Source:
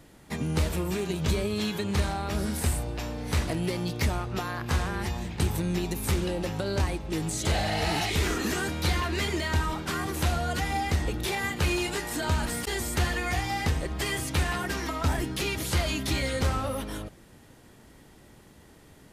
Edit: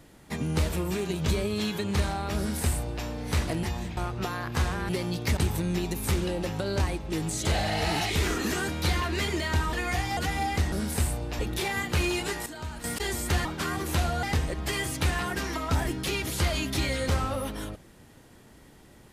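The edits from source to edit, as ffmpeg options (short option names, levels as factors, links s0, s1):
-filter_complex "[0:a]asplit=13[s0][s1][s2][s3][s4][s5][s6][s7][s8][s9][s10][s11][s12];[s0]atrim=end=3.632[s13];[s1]atrim=start=5.028:end=5.372[s14];[s2]atrim=start=4.108:end=5.032[s15];[s3]atrim=start=3.628:end=4.112[s16];[s4]atrim=start=5.368:end=9.732[s17];[s5]atrim=start=13.118:end=13.562[s18];[s6]atrim=start=10.508:end=11.062[s19];[s7]atrim=start=2.378:end=3.052[s20];[s8]atrim=start=11.058:end=12.132[s21];[s9]atrim=start=12.128:end=12.512,asetpts=PTS-STARTPTS,volume=0.299[s22];[s10]atrim=start=12.508:end=13.122[s23];[s11]atrim=start=9.728:end=10.512[s24];[s12]atrim=start=13.558[s25];[s13][s14]acrossfade=d=0.004:c1=hsin:c2=hsin[s26];[s26][s15]acrossfade=d=0.004:c1=hsin:c2=hsin[s27];[s27][s16]acrossfade=d=0.004:c1=hsin:c2=hsin[s28];[s28][s17]acrossfade=d=0.004:c1=hsin:c2=hsin[s29];[s29][s18]acrossfade=d=0.004:c1=hsin:c2=hsin[s30];[s30][s19]acrossfade=d=0.004:c1=hsin:c2=hsin[s31];[s31][s20]acrossfade=d=0.004:c1=hsin:c2=hsin[s32];[s32][s21]acrossfade=d=0.004:c1=hsin:c2=hsin[s33];[s33][s22]acrossfade=d=0.004:c1=hsin:c2=hsin[s34];[s34][s23]acrossfade=d=0.004:c1=hsin:c2=hsin[s35];[s35][s24]acrossfade=d=0.004:c1=hsin:c2=hsin[s36];[s36][s25]acrossfade=d=0.004:c1=hsin:c2=hsin"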